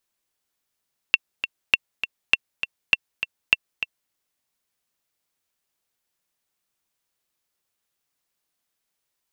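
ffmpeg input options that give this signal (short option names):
-f lavfi -i "aevalsrc='pow(10,(-1.5-10*gte(mod(t,2*60/201),60/201))/20)*sin(2*PI*2700*mod(t,60/201))*exp(-6.91*mod(t,60/201)/0.03)':d=2.98:s=44100"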